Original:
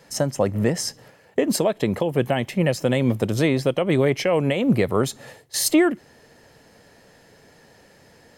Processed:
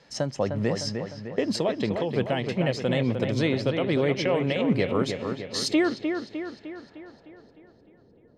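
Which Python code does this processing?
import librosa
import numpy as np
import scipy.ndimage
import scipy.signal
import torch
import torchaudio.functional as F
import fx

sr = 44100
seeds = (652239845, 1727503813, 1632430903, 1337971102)

y = fx.filter_sweep_lowpass(x, sr, from_hz=4600.0, to_hz=390.0, start_s=6.32, end_s=7.54, q=1.6)
y = fx.echo_wet_lowpass(y, sr, ms=304, feedback_pct=54, hz=2900.0, wet_db=-6.0)
y = y * 10.0 ** (-5.5 / 20.0)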